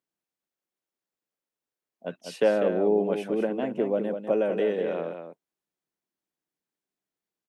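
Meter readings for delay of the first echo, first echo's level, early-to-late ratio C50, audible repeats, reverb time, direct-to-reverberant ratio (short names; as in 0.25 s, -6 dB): 0.198 s, -7.5 dB, none, 1, none, none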